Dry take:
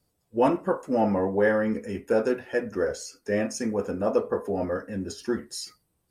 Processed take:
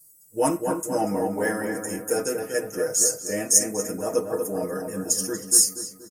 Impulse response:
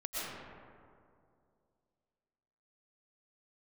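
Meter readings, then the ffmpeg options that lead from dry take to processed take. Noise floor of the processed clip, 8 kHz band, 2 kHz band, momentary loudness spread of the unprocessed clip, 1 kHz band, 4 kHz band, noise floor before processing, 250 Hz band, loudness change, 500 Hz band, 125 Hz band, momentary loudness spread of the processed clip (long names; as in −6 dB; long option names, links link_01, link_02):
−53 dBFS, +21.5 dB, −0.5 dB, 10 LU, −0.5 dB, +9.5 dB, −75 dBFS, −2.0 dB, +4.0 dB, −1.0 dB, −1.5 dB, 11 LU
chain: -filter_complex "[0:a]aecho=1:1:6.4:0.91,aexciter=amount=12.5:drive=8.8:freq=6000,asplit=2[link_01][link_02];[link_02]adelay=238,lowpass=frequency=1900:poles=1,volume=-5dB,asplit=2[link_03][link_04];[link_04]adelay=238,lowpass=frequency=1900:poles=1,volume=0.52,asplit=2[link_05][link_06];[link_06]adelay=238,lowpass=frequency=1900:poles=1,volume=0.52,asplit=2[link_07][link_08];[link_08]adelay=238,lowpass=frequency=1900:poles=1,volume=0.52,asplit=2[link_09][link_10];[link_10]adelay=238,lowpass=frequency=1900:poles=1,volume=0.52,asplit=2[link_11][link_12];[link_12]adelay=238,lowpass=frequency=1900:poles=1,volume=0.52,asplit=2[link_13][link_14];[link_14]adelay=238,lowpass=frequency=1900:poles=1,volume=0.52[link_15];[link_03][link_05][link_07][link_09][link_11][link_13][link_15]amix=inputs=7:normalize=0[link_16];[link_01][link_16]amix=inputs=2:normalize=0,volume=-4.5dB"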